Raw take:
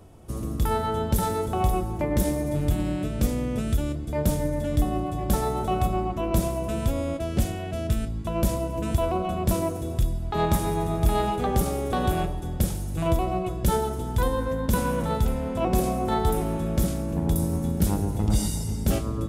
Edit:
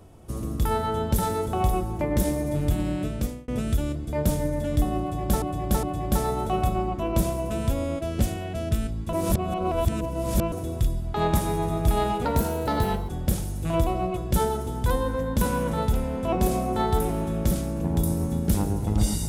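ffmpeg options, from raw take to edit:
-filter_complex "[0:a]asplit=8[a][b][c][d][e][f][g][h];[a]atrim=end=3.48,asetpts=PTS-STARTPTS,afade=t=out:st=3.09:d=0.39[i];[b]atrim=start=3.48:end=5.422,asetpts=PTS-STARTPTS,afade=t=in:d=0.004:c=hsin[j];[c]atrim=start=5.008:end=5.422[k];[d]atrim=start=5.008:end=8.312[l];[e]atrim=start=8.308:end=9.702,asetpts=PTS-STARTPTS,areverse[m];[f]atrim=start=9.698:end=11.434[n];[g]atrim=start=11.43:end=12.41,asetpts=PTS-STARTPTS,asetrate=51597,aresample=44100,atrim=end_sample=36938,asetpts=PTS-STARTPTS[o];[h]atrim=start=12.406[p];[i][j]concat=n=2:v=0:a=1[q];[q][k]acrossfade=d=0.004:c1=hsin:c2=hsin[r];[r][l]acrossfade=d=0.004:c1=hsin:c2=hsin[s];[s][m]acrossfade=d=0.004:c1=hsin:c2=hsin[t];[t][n]acrossfade=d=0.004:c1=hsin:c2=hsin[u];[u][o]acrossfade=d=0.004:c1=hsin:c2=hsin[v];[v][p]acrossfade=d=0.004:c1=hsin:c2=hsin"

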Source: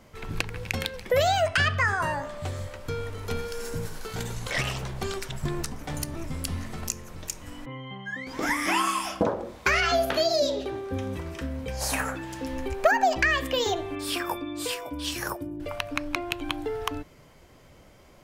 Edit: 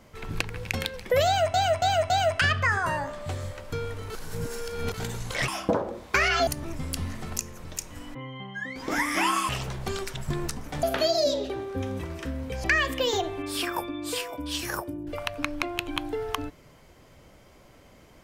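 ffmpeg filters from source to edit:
-filter_complex "[0:a]asplit=11[a][b][c][d][e][f][g][h][i][j][k];[a]atrim=end=1.542[l];[b]atrim=start=1.258:end=1.542[m];[c]atrim=start=1.258:end=1.542[n];[d]atrim=start=1.258:end=3.262[o];[e]atrim=start=3.258:end=4.102,asetpts=PTS-STARTPTS,areverse[p];[f]atrim=start=4.098:end=4.642[q];[g]atrim=start=8.998:end=9.992[r];[h]atrim=start=5.978:end=9.002[s];[i]atrim=start=4.638:end=5.982[t];[j]atrim=start=9.988:end=11.802[u];[k]atrim=start=13.168[v];[l][m]acrossfade=d=0.004:c1=hsin:c2=hsin[w];[w][n]acrossfade=d=0.004:c1=hsin:c2=hsin[x];[x][o]acrossfade=d=0.004:c1=hsin:c2=hsin[y];[y][p]acrossfade=d=0.004:c1=hsin:c2=hsin[z];[z][q]acrossfade=d=0.004:c1=hsin:c2=hsin[aa];[aa][r]acrossfade=d=0.004:c1=hsin:c2=hsin[ab];[ab][s]acrossfade=d=0.004:c1=hsin:c2=hsin[ac];[ac][t]acrossfade=d=0.004:c1=hsin:c2=hsin[ad];[ad][u]acrossfade=d=0.004:c1=hsin:c2=hsin[ae];[ae][v]acrossfade=d=0.004:c1=hsin:c2=hsin"

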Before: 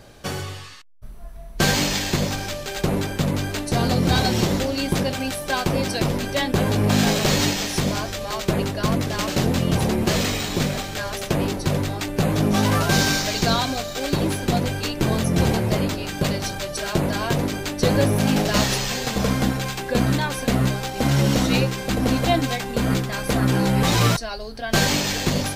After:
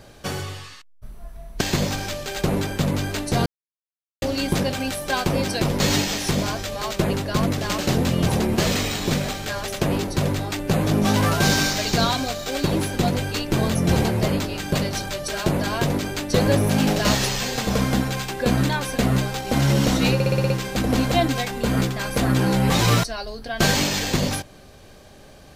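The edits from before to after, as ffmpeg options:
-filter_complex "[0:a]asplit=11[a][b][c][d][e][f][g][h][i][j][k];[a]atrim=end=1.612[l];[b]atrim=start=2.008:end=3.86,asetpts=PTS-STARTPTS,afade=t=out:st=1.848:d=0.004:c=hsin[m];[c]atrim=start=3.86:end=4.62,asetpts=PTS-STARTPTS,volume=0[n];[d]atrim=start=4.62:end=6.202,asetpts=PTS-STARTPTS,afade=t=in:d=0.004:c=hsin[o];[e]atrim=start=7.288:end=21.692[p];[f]atrim=start=21.628:end=21.692[q];[g]atrim=start=21.628:end=21.692[r];[h]atrim=start=21.628:end=21.692[s];[i]atrim=start=21.628:end=21.692[t];[j]atrim=start=21.628:end=21.692[u];[k]atrim=start=21.628[v];[m][n][o]concat=n=3:v=0:a=1[w];[l][w]acrossfade=d=0.004:c1=hsin:c2=hsin[x];[x][p]acrossfade=d=0.004:c1=hsin:c2=hsin[y];[y][q]acrossfade=d=0.004:c1=hsin:c2=hsin[z];[z][r]acrossfade=d=0.004:c1=hsin:c2=hsin[aa];[aa][s]acrossfade=d=0.004:c1=hsin:c2=hsin[ab];[ab][t]acrossfade=d=0.004:c1=hsin:c2=hsin[ac];[ac][u]acrossfade=d=0.004:c1=hsin:c2=hsin[ad];[ad][v]acrossfade=d=0.004:c1=hsin:c2=hsin"

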